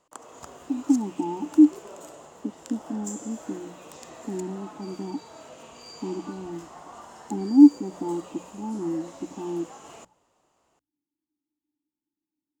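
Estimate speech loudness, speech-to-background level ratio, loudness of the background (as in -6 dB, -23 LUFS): -25.0 LUFS, 19.5 dB, -44.5 LUFS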